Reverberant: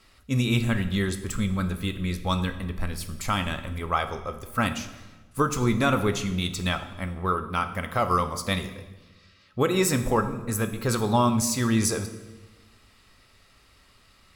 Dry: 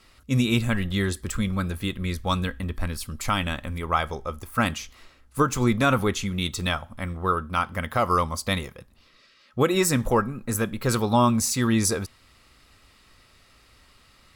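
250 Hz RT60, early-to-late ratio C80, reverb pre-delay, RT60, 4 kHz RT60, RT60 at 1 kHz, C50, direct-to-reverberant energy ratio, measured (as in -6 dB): 1.6 s, 13.5 dB, 3 ms, 1.2 s, 1.0 s, 1.1 s, 11.5 dB, 8.5 dB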